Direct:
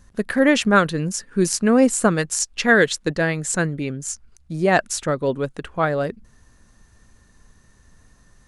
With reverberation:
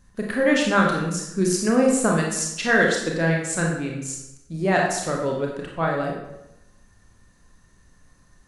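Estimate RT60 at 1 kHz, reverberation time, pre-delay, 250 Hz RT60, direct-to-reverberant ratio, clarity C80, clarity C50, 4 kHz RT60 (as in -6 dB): 0.90 s, 0.90 s, 26 ms, 0.95 s, -1.0 dB, 5.5 dB, 3.0 dB, 0.70 s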